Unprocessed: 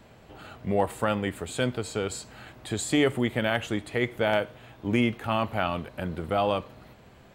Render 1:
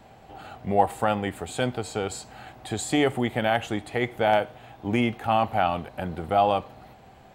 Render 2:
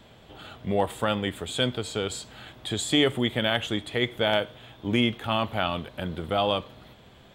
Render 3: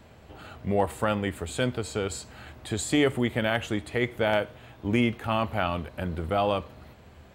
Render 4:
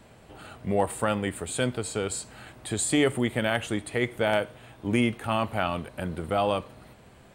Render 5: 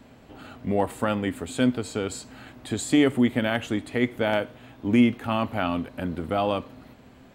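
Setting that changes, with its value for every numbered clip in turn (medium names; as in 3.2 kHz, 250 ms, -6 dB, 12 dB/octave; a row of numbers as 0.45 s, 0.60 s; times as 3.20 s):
peaking EQ, frequency: 770 Hz, 3.4 kHz, 75 Hz, 9 kHz, 260 Hz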